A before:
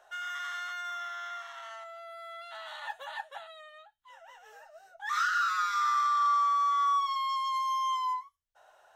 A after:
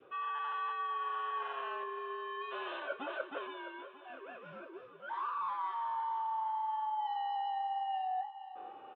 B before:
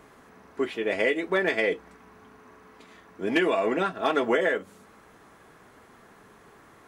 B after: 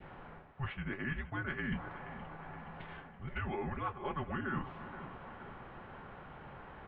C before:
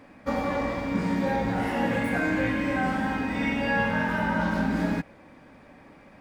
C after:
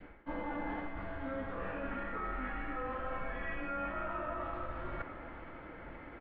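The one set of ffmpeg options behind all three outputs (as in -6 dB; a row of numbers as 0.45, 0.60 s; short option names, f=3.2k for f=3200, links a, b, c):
-af "adynamicequalizer=threshold=0.00891:dfrequency=1300:dqfactor=1.5:tfrequency=1300:tqfactor=1.5:attack=5:release=100:ratio=0.375:range=3:mode=boostabove:tftype=bell,areverse,acompressor=threshold=-38dB:ratio=16,areverse,highpass=f=240:t=q:w=0.5412,highpass=f=240:t=q:w=1.307,lowpass=f=3.4k:t=q:w=0.5176,lowpass=f=3.4k:t=q:w=0.7071,lowpass=f=3.4k:t=q:w=1.932,afreqshift=-270,aecho=1:1:471|942|1413|1884|2355|2826:0.211|0.12|0.0687|0.0391|0.0223|0.0127,volume=3.5dB"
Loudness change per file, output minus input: -8.0, -16.0, -14.0 LU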